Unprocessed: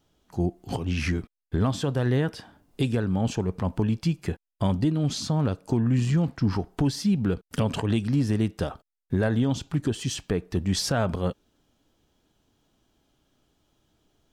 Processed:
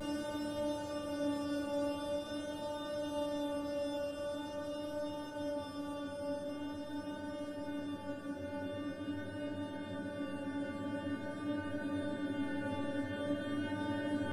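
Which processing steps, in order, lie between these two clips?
extreme stretch with random phases 32×, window 1.00 s, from 0:08.69
stiff-string resonator 290 Hz, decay 0.79 s, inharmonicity 0.002
pitch vibrato 0.45 Hz 21 cents
level +15 dB

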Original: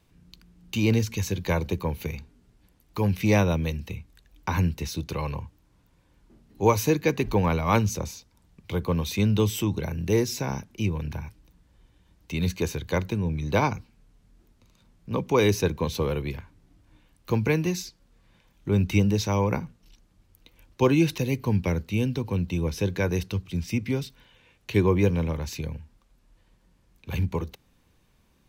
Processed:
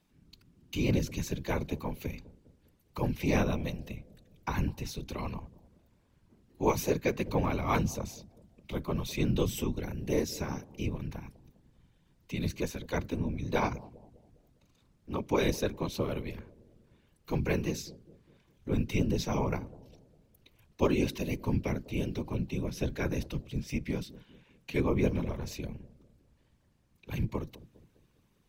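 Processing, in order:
random phases in short frames
bucket-brigade delay 202 ms, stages 1,024, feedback 46%, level −18.5 dB
level −6.5 dB

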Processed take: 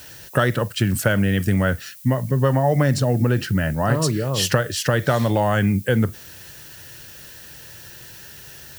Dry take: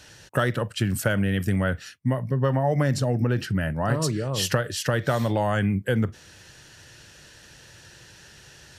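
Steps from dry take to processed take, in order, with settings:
background noise violet −48 dBFS
level +4.5 dB

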